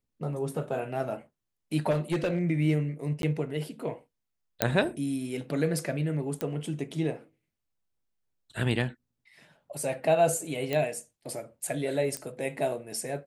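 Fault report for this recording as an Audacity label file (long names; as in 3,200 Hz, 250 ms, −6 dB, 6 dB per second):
1.900000	2.420000	clipping −22.5 dBFS
3.220000	3.230000	drop-out 12 ms
4.620000	4.620000	click −6 dBFS
6.410000	6.410000	click −17 dBFS
10.730000	10.730000	click −16 dBFS
12.170000	12.170000	click −18 dBFS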